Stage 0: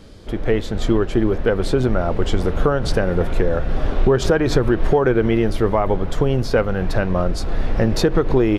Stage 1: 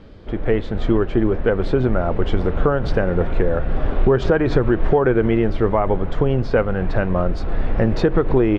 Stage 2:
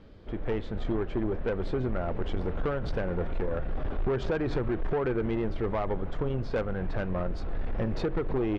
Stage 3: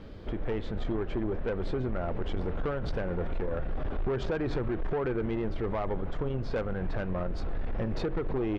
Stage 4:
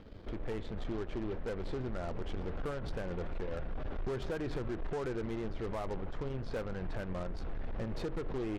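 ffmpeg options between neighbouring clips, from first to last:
ffmpeg -i in.wav -af "lowpass=2700" out.wav
ffmpeg -i in.wav -af "asoftclip=type=tanh:threshold=-13.5dB,volume=-9dB" out.wav
ffmpeg -i in.wav -af "alimiter=level_in=7.5dB:limit=-24dB:level=0:latency=1:release=260,volume=-7.5dB,volume=6.5dB" out.wav
ffmpeg -i in.wav -af "aeval=exprs='0.0596*(cos(1*acos(clip(val(0)/0.0596,-1,1)))-cos(1*PI/2))+0.00531*(cos(8*acos(clip(val(0)/0.0596,-1,1)))-cos(8*PI/2))':channel_layout=same,volume=-6.5dB" out.wav

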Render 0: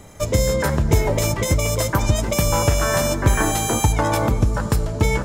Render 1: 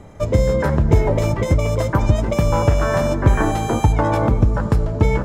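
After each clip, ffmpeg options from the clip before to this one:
ffmpeg -i in.wav -af "lowpass=frequency=1200:poles=1,volume=3dB" out.wav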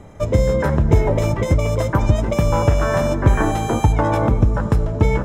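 ffmpeg -i in.wav -af "bandreject=frequency=4500:width=8.9" out.wav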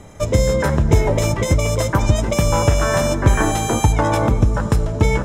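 ffmpeg -i in.wav -af "equalizer=frequency=8400:width_type=o:width=2.7:gain=10.5" out.wav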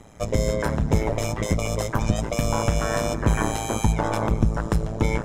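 ffmpeg -i in.wav -af "tremolo=f=110:d=0.974,volume=-2.5dB" out.wav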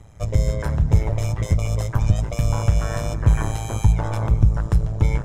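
ffmpeg -i in.wav -af "lowshelf=frequency=160:width_type=q:width=1.5:gain=9.5,volume=-4.5dB" out.wav

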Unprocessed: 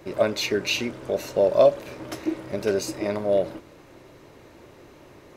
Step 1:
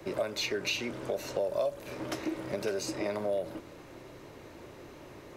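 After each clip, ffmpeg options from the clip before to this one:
ffmpeg -i in.wav -filter_complex "[0:a]acrossover=split=400|1100|3600[link_01][link_02][link_03][link_04];[link_01]alimiter=level_in=5dB:limit=-24dB:level=0:latency=1,volume=-5dB[link_05];[link_05][link_02][link_03][link_04]amix=inputs=4:normalize=0,acrossover=split=110|7900[link_06][link_07][link_08];[link_06]acompressor=threshold=-55dB:ratio=4[link_09];[link_07]acompressor=threshold=-30dB:ratio=4[link_10];[link_08]acompressor=threshold=-53dB:ratio=4[link_11];[link_09][link_10][link_11]amix=inputs=3:normalize=0" out.wav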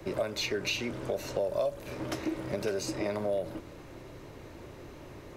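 ffmpeg -i in.wav -af "lowshelf=frequency=120:gain=9.5" out.wav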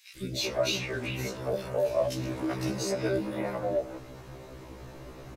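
ffmpeg -i in.wav -filter_complex "[0:a]aeval=exprs='0.126*(cos(1*acos(clip(val(0)/0.126,-1,1)))-cos(1*PI/2))+0.00224*(cos(7*acos(clip(val(0)/0.126,-1,1)))-cos(7*PI/2))':channel_layout=same,acrossover=split=350|2400[link_01][link_02][link_03];[link_01]adelay=160[link_04];[link_02]adelay=390[link_05];[link_04][link_05][link_03]amix=inputs=3:normalize=0,afftfilt=real='re*1.73*eq(mod(b,3),0)':imag='im*1.73*eq(mod(b,3),0)':win_size=2048:overlap=0.75,volume=6.5dB" out.wav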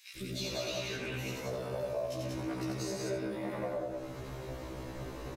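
ffmpeg -i in.wav -filter_complex "[0:a]acompressor=threshold=-40dB:ratio=3,asplit=2[link_01][link_02];[link_02]aecho=0:1:87.46|186.6|268.2:0.708|0.794|0.251[link_03];[link_01][link_03]amix=inputs=2:normalize=0" out.wav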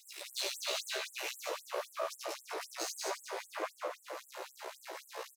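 ffmpeg -i in.wav -af "aeval=exprs='max(val(0),0)':channel_layout=same,aecho=1:1:196|392|588|784|980|1176|1372:0.335|0.188|0.105|0.0588|0.0329|0.0184|0.0103,afftfilt=real='re*gte(b*sr/1024,330*pow(7600/330,0.5+0.5*sin(2*PI*3.8*pts/sr)))':imag='im*gte(b*sr/1024,330*pow(7600/330,0.5+0.5*sin(2*PI*3.8*pts/sr)))':win_size=1024:overlap=0.75,volume=7dB" out.wav

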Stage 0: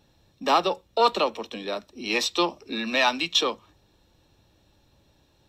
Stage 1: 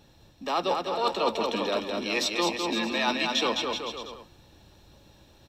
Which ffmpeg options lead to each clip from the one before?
ffmpeg -i in.wav -af "areverse,acompressor=threshold=-30dB:ratio=6,areverse,aecho=1:1:210|378|512.4|619.9|705.9:0.631|0.398|0.251|0.158|0.1,volume=5dB" out.wav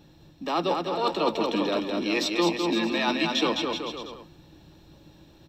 ffmpeg -i in.wav -af "equalizer=frequency=160:width_type=o:width=0.33:gain=11,equalizer=frequency=315:width_type=o:width=0.33:gain=10,equalizer=frequency=6300:width_type=o:width=0.33:gain=-3,equalizer=frequency=10000:width_type=o:width=0.33:gain=-10" out.wav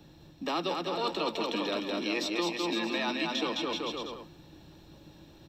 ffmpeg -i in.wav -filter_complex "[0:a]acrossover=split=160|420|1400[link_01][link_02][link_03][link_04];[link_01]acompressor=threshold=-55dB:ratio=4[link_05];[link_02]acompressor=threshold=-36dB:ratio=4[link_06];[link_03]acompressor=threshold=-36dB:ratio=4[link_07];[link_04]acompressor=threshold=-33dB:ratio=4[link_08];[link_05][link_06][link_07][link_08]amix=inputs=4:normalize=0" out.wav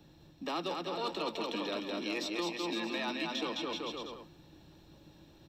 ffmpeg -i in.wav -af "volume=22dB,asoftclip=hard,volume=-22dB,volume=-4.5dB" out.wav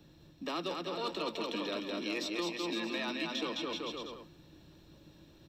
ffmpeg -i in.wav -af "equalizer=frequency=810:width=4.8:gain=-6.5" out.wav

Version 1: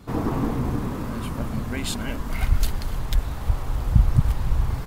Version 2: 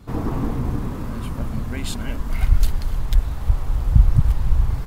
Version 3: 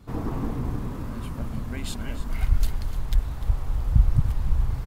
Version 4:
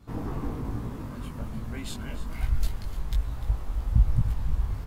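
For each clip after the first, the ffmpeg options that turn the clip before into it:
ffmpeg -i in.wav -af "lowshelf=frequency=100:gain=8,volume=-2dB" out.wav
ffmpeg -i in.wav -af "aecho=1:1:299:0.2,volume=-5dB" out.wav
ffmpeg -i in.wav -af "flanger=delay=17.5:depth=3.2:speed=1.2" out.wav

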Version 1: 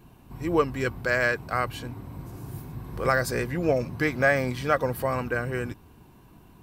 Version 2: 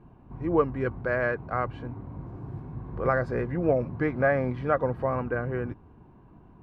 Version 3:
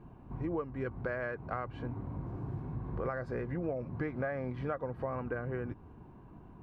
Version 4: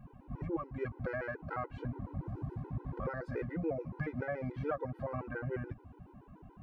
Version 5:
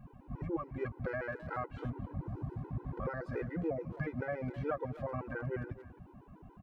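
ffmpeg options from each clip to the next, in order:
ffmpeg -i in.wav -af "lowpass=1300" out.wav
ffmpeg -i in.wav -af "acompressor=threshold=-33dB:ratio=6" out.wav
ffmpeg -i in.wav -af "afftfilt=real='re*gt(sin(2*PI*7*pts/sr)*(1-2*mod(floor(b*sr/1024/260),2)),0)':imag='im*gt(sin(2*PI*7*pts/sr)*(1-2*mod(floor(b*sr/1024/260),2)),0)':win_size=1024:overlap=0.75,volume=2dB" out.wav
ffmpeg -i in.wav -filter_complex "[0:a]asplit=2[link_01][link_02];[link_02]adelay=260,highpass=300,lowpass=3400,asoftclip=type=hard:threshold=-33.5dB,volume=-14dB[link_03];[link_01][link_03]amix=inputs=2:normalize=0" out.wav

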